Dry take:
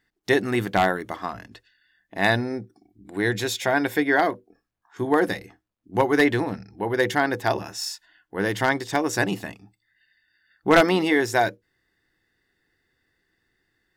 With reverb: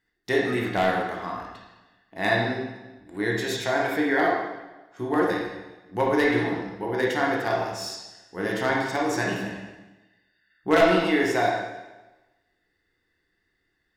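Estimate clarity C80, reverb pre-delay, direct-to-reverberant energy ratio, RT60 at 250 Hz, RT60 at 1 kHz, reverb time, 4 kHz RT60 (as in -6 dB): 3.5 dB, 7 ms, -3.0 dB, 1.2 s, 1.1 s, 1.1 s, 1.1 s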